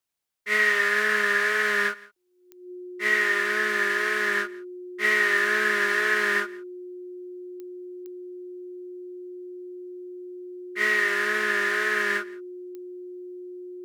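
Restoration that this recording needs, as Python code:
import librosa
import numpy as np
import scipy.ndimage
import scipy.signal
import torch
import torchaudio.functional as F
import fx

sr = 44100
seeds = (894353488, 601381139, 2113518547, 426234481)

y = fx.fix_declick_ar(x, sr, threshold=10.0)
y = fx.notch(y, sr, hz=360.0, q=30.0)
y = fx.fix_echo_inverse(y, sr, delay_ms=170, level_db=-22.5)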